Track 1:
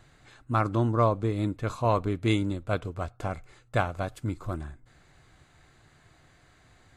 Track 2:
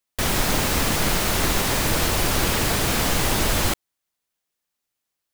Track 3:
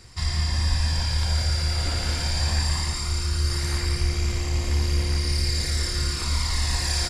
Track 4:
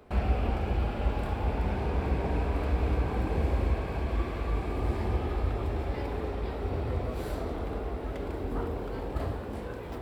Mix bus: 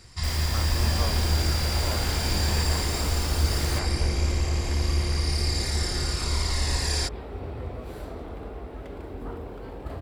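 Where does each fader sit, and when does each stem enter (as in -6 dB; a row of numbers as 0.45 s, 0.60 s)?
-13.0 dB, -13.0 dB, -2.0 dB, -3.5 dB; 0.00 s, 0.05 s, 0.00 s, 0.70 s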